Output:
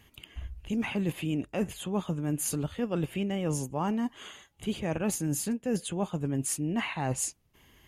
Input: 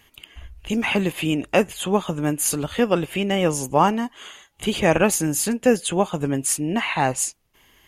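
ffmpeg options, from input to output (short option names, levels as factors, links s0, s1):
-af "equalizer=f=110:w=0.36:g=9.5,areverse,acompressor=threshold=0.0891:ratio=6,areverse,volume=0.501"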